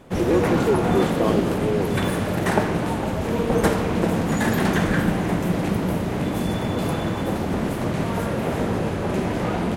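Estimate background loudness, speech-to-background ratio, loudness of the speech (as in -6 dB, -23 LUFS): -23.0 LUFS, -2.5 dB, -25.5 LUFS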